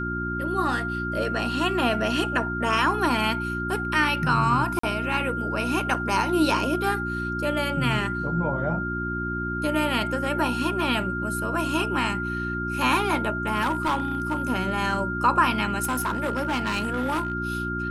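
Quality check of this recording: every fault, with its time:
hum 60 Hz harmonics 6 -31 dBFS
tone 1400 Hz -29 dBFS
4.79–4.83 gap 44 ms
5.94–5.95 gap 5.3 ms
13.61–14.42 clipped -20 dBFS
15.83–17.33 clipped -21.5 dBFS

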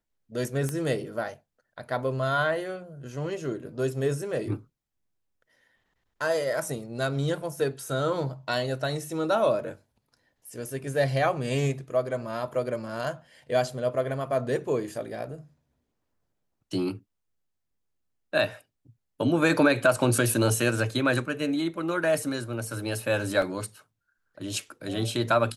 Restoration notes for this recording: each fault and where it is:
0.69 pop -17 dBFS
23.42 gap 2.1 ms

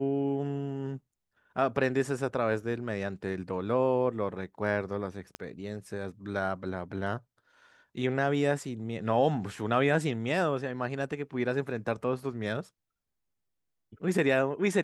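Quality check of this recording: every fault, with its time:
5.35 pop -22 dBFS

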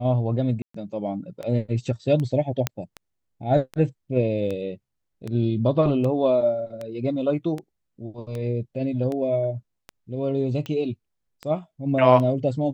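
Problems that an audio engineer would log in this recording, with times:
tick 78 rpm -19 dBFS
0.62–0.74 gap 0.124 s
2.67 pop -7 dBFS

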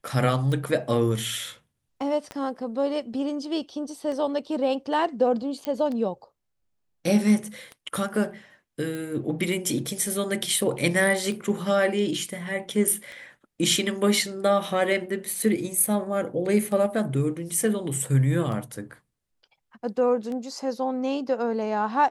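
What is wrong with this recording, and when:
tick 33 1/3 rpm
2.31 pop -21 dBFS
5.65 pop -16 dBFS
8.95 pop

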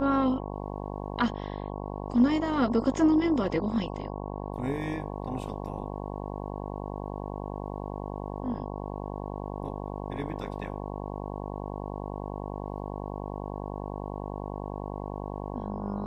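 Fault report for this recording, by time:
buzz 50 Hz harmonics 22 -36 dBFS

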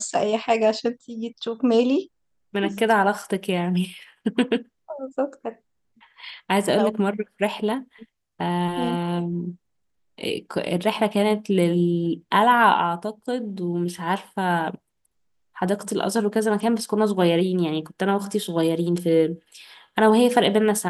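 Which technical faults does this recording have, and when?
3.22 gap 3.5 ms
10.94 gap 4 ms

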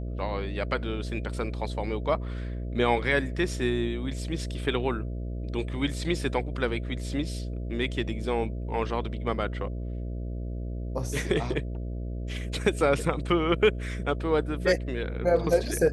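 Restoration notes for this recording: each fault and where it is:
buzz 60 Hz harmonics 11 -33 dBFS

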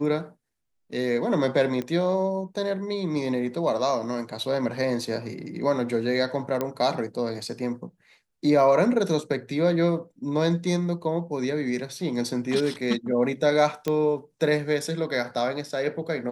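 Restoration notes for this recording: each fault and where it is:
1.82 pop -19 dBFS
6.61 pop -13 dBFS
13.88 pop -13 dBFS

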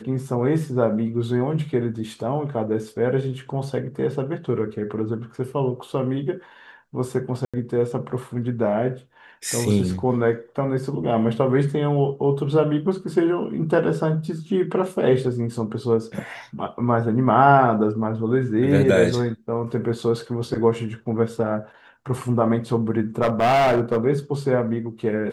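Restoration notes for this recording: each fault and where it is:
7.45–7.54 gap 86 ms
23.22–23.98 clipped -14.5 dBFS

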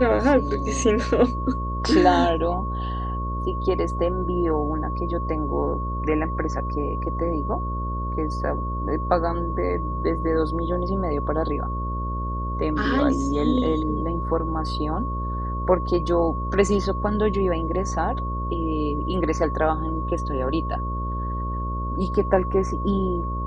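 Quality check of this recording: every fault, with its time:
buzz 60 Hz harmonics 10 -28 dBFS
tone 1100 Hz -30 dBFS

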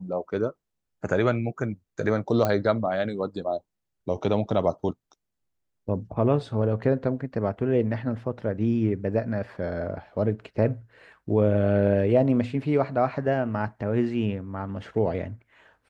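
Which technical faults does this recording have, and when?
2.45 pop -11 dBFS

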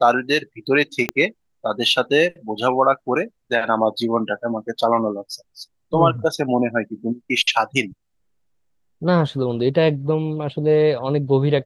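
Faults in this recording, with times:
1.09 pop -7 dBFS

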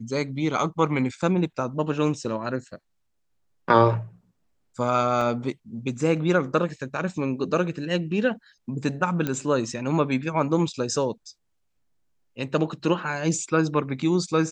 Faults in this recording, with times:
5.21 gap 3.6 ms
9.27 pop -13 dBFS

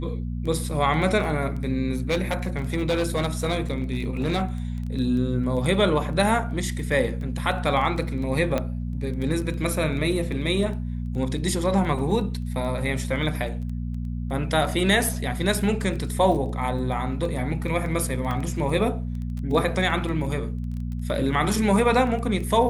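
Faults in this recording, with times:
crackle 10/s -31 dBFS
hum 60 Hz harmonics 4 -29 dBFS
1.91–4.43 clipped -18.5 dBFS
8.58 pop -11 dBFS
18.31 gap 3.7 ms

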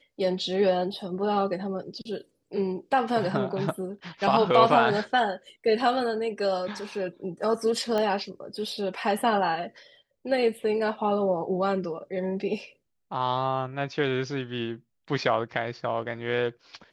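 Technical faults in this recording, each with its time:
7.98 pop -16 dBFS

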